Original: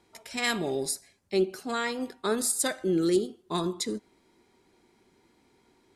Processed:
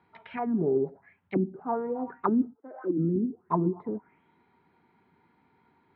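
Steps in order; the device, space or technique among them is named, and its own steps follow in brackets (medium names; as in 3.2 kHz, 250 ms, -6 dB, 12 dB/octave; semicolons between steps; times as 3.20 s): 2.53–2.97 s: high-pass 660 Hz -> 250 Hz 24 dB/octave; envelope filter bass rig (touch-sensitive low-pass 260–4600 Hz down, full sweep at -24 dBFS; cabinet simulation 85–2200 Hz, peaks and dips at 89 Hz +5 dB, 160 Hz +8 dB, 350 Hz -6 dB, 560 Hz -6 dB, 920 Hz +6 dB, 1.4 kHz +4 dB); trim -1.5 dB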